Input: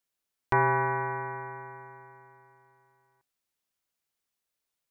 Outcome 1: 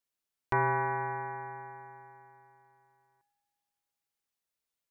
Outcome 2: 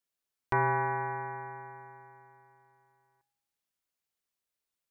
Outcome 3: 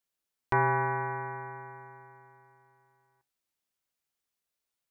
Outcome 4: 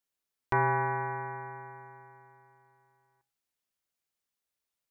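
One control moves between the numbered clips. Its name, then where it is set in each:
feedback comb, decay: 2.2 s, 1 s, 0.18 s, 0.41 s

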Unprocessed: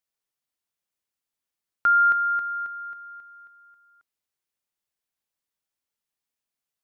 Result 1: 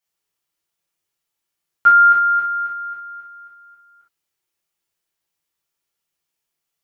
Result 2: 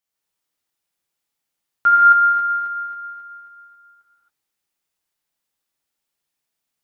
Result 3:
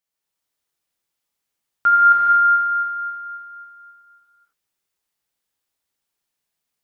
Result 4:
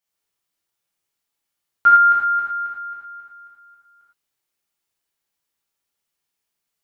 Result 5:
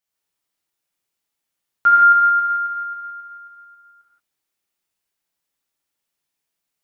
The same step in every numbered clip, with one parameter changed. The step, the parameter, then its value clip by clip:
gated-style reverb, gate: 80 ms, 300 ms, 530 ms, 130 ms, 200 ms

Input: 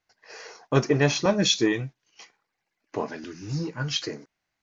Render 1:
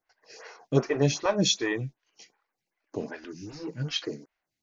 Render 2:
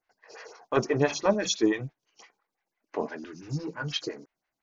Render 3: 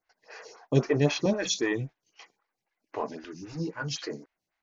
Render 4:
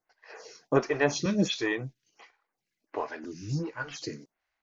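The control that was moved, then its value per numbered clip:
lamp-driven phase shifter, rate: 2.6 Hz, 5.9 Hz, 3.8 Hz, 1.4 Hz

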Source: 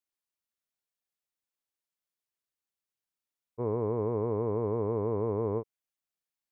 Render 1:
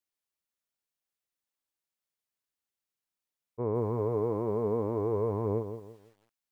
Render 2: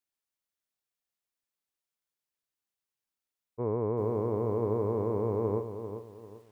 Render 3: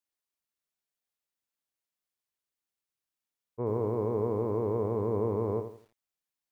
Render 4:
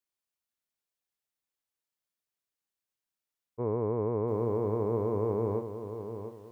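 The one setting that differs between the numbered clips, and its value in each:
bit-crushed delay, time: 168 ms, 394 ms, 83 ms, 697 ms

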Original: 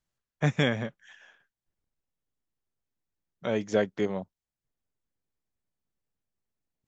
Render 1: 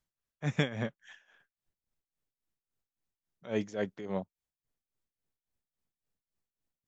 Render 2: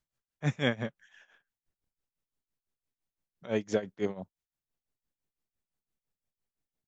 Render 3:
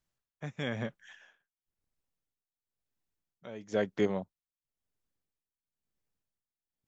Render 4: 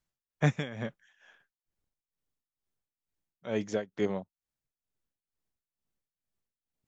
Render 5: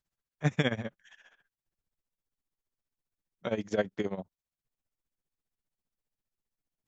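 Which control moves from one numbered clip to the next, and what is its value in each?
tremolo, rate: 3.6 Hz, 5.9 Hz, 0.99 Hz, 2.2 Hz, 15 Hz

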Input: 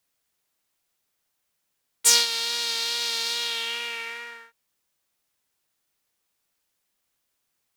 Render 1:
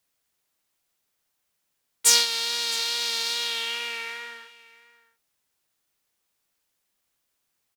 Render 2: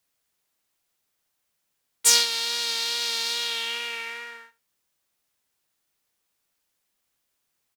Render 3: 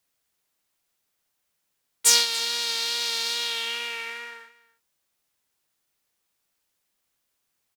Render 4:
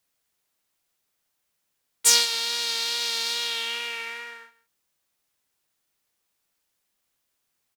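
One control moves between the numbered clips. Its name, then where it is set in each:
delay, time: 663 ms, 77 ms, 286 ms, 159 ms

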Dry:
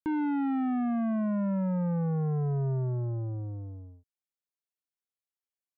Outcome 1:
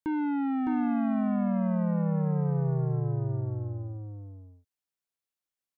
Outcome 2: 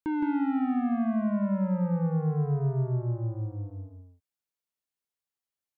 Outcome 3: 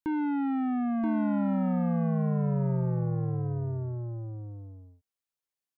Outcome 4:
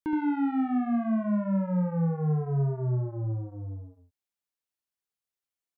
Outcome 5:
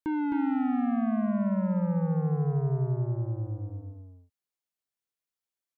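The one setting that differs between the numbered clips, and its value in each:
delay, time: 610 ms, 166 ms, 978 ms, 72 ms, 262 ms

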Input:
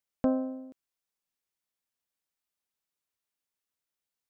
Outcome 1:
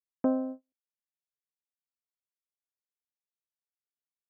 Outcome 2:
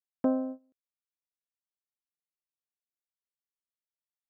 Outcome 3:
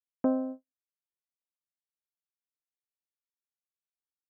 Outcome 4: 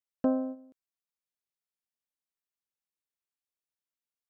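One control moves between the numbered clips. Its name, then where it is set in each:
gate, range: -42 dB, -23 dB, -56 dB, -9 dB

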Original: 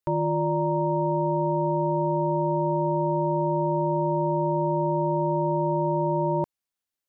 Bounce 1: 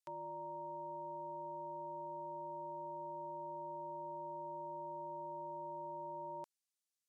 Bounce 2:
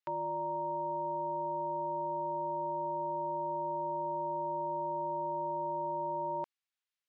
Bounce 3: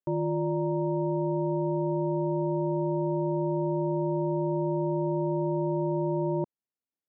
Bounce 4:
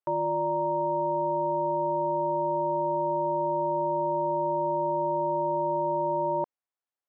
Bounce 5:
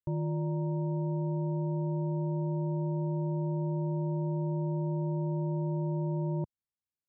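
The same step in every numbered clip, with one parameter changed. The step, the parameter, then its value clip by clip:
band-pass filter, frequency: 7.3 kHz, 2.5 kHz, 270 Hz, 800 Hz, 100 Hz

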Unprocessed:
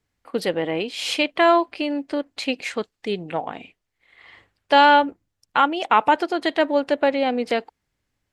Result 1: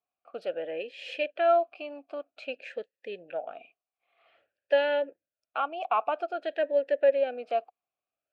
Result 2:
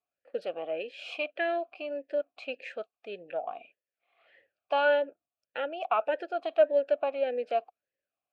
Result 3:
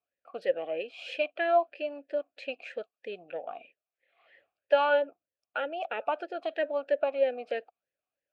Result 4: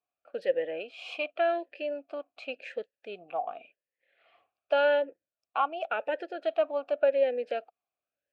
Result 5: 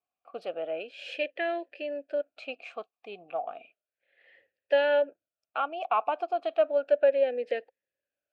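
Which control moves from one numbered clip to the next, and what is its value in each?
talking filter, rate: 0.51 Hz, 1.7 Hz, 3.1 Hz, 0.89 Hz, 0.33 Hz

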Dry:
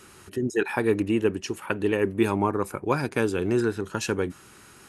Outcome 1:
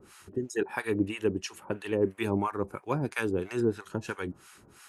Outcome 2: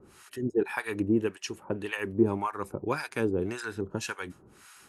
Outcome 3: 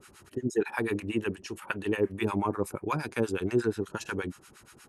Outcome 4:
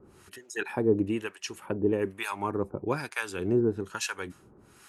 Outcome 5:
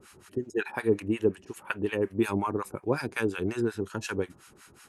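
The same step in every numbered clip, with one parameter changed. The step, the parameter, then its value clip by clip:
harmonic tremolo, rate: 3 Hz, 1.8 Hz, 8.4 Hz, 1.1 Hz, 5.5 Hz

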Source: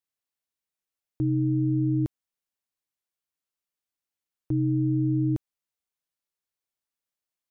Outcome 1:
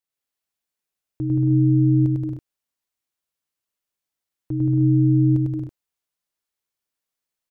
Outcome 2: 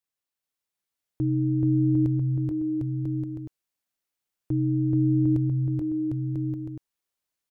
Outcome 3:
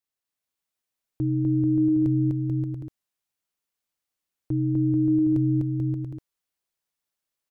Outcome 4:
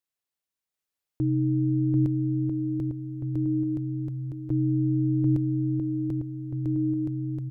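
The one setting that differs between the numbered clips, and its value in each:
bouncing-ball echo, first gap: 100 ms, 430 ms, 250 ms, 740 ms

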